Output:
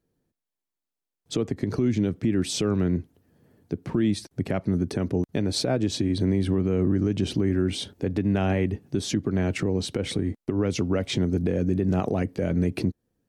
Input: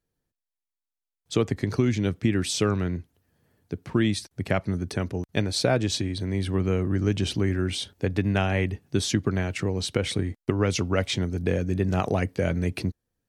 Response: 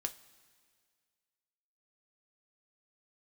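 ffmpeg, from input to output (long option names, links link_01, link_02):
-af "equalizer=frequency=270:width=0.46:gain=10.5,alimiter=limit=-14.5dB:level=0:latency=1:release=193"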